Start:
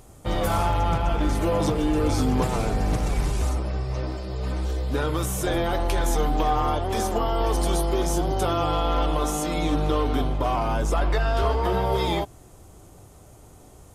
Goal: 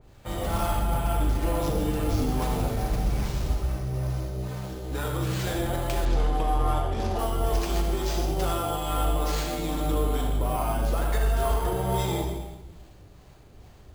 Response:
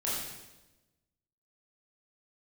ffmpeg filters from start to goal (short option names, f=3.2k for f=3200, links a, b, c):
-filter_complex "[0:a]acrossover=split=600[a][b];[a]aeval=exprs='val(0)*(1-0.5/2+0.5/2*cos(2*PI*2.3*n/s))':c=same[c];[b]aeval=exprs='val(0)*(1-0.5/2-0.5/2*cos(2*PI*2.3*n/s))':c=same[d];[c][d]amix=inputs=2:normalize=0,asplit=2[e][f];[1:a]atrim=start_sample=2205,lowshelf=f=100:g=9.5,adelay=38[g];[f][g]afir=irnorm=-1:irlink=0,volume=-7.5dB[h];[e][h]amix=inputs=2:normalize=0,acrusher=samples=4:mix=1:aa=0.000001,asettb=1/sr,asplit=3[i][j][k];[i]atrim=end=6.054[l];[j]atrim=start=6.05:end=7.19,asetpts=PTS-STARTPTS,afade=t=in:d=0.004:c=qsin,afade=t=out:st=1.136:d=0.004:c=qsin,adynamicsmooth=sensitivity=4:basefreq=4.1k[m];[k]atrim=start=7.186[n];[l][m]acrossfade=d=0.004:c1=hsin:c2=qsin[o];[o][n]acrossfade=d=0.004:c1=qsin:c2=hsin,adynamicequalizer=threshold=0.00891:dfrequency=2900:dqfactor=0.7:tfrequency=2900:tqfactor=0.7:attack=5:release=100:ratio=0.375:range=1.5:mode=boostabove:tftype=highshelf,volume=-5dB"